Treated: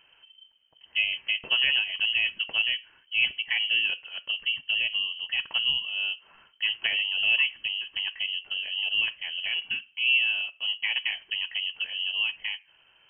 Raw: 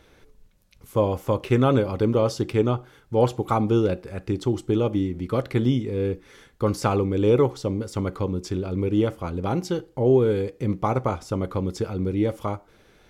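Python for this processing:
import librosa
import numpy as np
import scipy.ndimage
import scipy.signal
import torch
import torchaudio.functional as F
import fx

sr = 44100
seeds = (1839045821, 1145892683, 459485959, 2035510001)

y = fx.freq_invert(x, sr, carrier_hz=3100)
y = y * 10.0 ** (-5.5 / 20.0)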